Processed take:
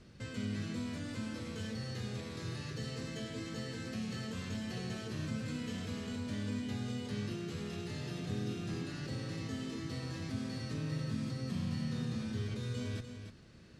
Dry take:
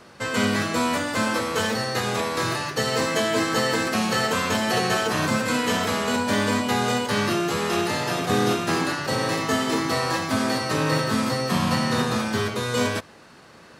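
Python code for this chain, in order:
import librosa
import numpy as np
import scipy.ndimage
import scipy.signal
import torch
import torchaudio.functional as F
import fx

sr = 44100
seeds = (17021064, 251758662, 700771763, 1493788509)

p1 = fx.air_absorb(x, sr, metres=57.0)
p2 = fx.over_compress(p1, sr, threshold_db=-32.0, ratio=-1.0)
p3 = p1 + (p2 * 10.0 ** (-0.5 / 20.0))
p4 = fx.tone_stack(p3, sr, knobs='10-0-1')
p5 = p4 + 10.0 ** (-8.5 / 20.0) * np.pad(p4, (int(298 * sr / 1000.0), 0))[:len(p4)]
y = p5 * 10.0 ** (1.0 / 20.0)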